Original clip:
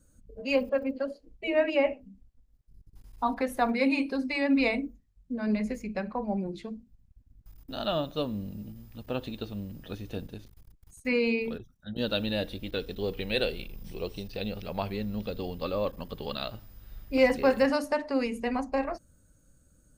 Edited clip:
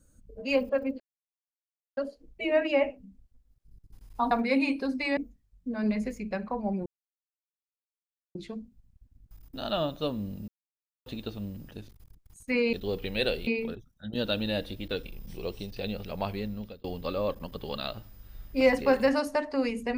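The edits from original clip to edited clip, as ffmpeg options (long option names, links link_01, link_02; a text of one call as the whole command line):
ffmpeg -i in.wav -filter_complex "[0:a]asplit=12[link_01][link_02][link_03][link_04][link_05][link_06][link_07][link_08][link_09][link_10][link_11][link_12];[link_01]atrim=end=1,asetpts=PTS-STARTPTS,afade=type=out:start_time=0.996:duration=0.004:curve=hsin,apad=pad_dur=0.97[link_13];[link_02]atrim=start=1:end=3.342,asetpts=PTS-STARTPTS,afade=type=in:duration=0.004:curve=hsin[link_14];[link_03]atrim=start=3.608:end=4.472[link_15];[link_04]atrim=start=4.808:end=6.5,asetpts=PTS-STARTPTS,afade=type=out:start_time=1.688:duration=0.004:curve=hsin,apad=pad_dur=1.49[link_16];[link_05]atrim=start=6.5:end=8.63,asetpts=PTS-STARTPTS,afade=type=in:duration=0.004:curve=hsin,afade=type=out:start_time=2.126:duration=0.004:curve=hsin[link_17];[link_06]atrim=start=8.63:end=9.21,asetpts=PTS-STARTPTS,volume=0[link_18];[link_07]atrim=start=9.21:end=9.862,asetpts=PTS-STARTPTS,afade=type=in:duration=0.004:curve=hsin[link_19];[link_08]atrim=start=10.278:end=11.302[link_20];[link_09]atrim=start=12.878:end=13.622[link_21];[link_10]atrim=start=11.298:end=12.882[link_22];[link_11]atrim=start=13.618:end=15.41,asetpts=PTS-STARTPTS,afade=type=out:start_time=1.222:duration=0.57:curve=qsin[link_23];[link_12]atrim=start=15.41,asetpts=PTS-STARTPTS,afade=type=in:duration=0.004:curve=hsin[link_24];[link_13][link_14]concat=n=2:v=0:a=1[link_25];[link_25][link_15]acrossfade=duration=0.004:curve1=hsin:curve2=hsin[link_26];[link_16][link_17][link_18][link_19]concat=n=4:v=0:a=1[link_27];[link_26][link_27]acrossfade=duration=0.004:curve1=hsin:curve2=hsin[link_28];[link_28][link_20]acrossfade=duration=0.004:curve1=hsin:curve2=hsin[link_29];[link_29][link_21]acrossfade=duration=0.004:curve1=hsin:curve2=hsin[link_30];[link_30][link_22]acrossfade=duration=0.004:curve1=hsin:curve2=hsin[link_31];[link_23][link_24]concat=n=2:v=0:a=1[link_32];[link_31][link_32]acrossfade=duration=0.004:curve1=hsin:curve2=hsin" out.wav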